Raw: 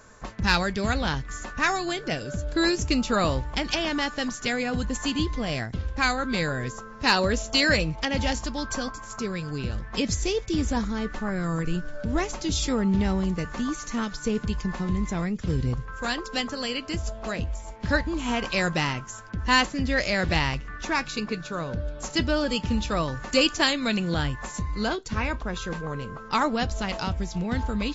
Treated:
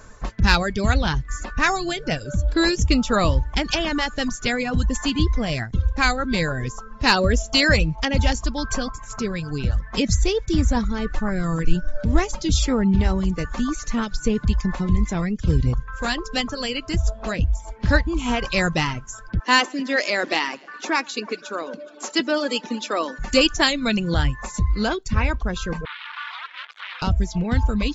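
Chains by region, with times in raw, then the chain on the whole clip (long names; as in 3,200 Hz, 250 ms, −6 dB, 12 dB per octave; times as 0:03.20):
0:19.39–0:23.19: Butterworth high-pass 250 Hz + delay that swaps between a low-pass and a high-pass 104 ms, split 2,100 Hz, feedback 68%, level −13.5 dB
0:25.85–0:27.02: sign of each sample alone + Chebyshev band-pass filter 1,200–3,600 Hz, order 3 + ring modulation 150 Hz
whole clip: reverb reduction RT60 0.75 s; low-shelf EQ 81 Hz +11.5 dB; level +4 dB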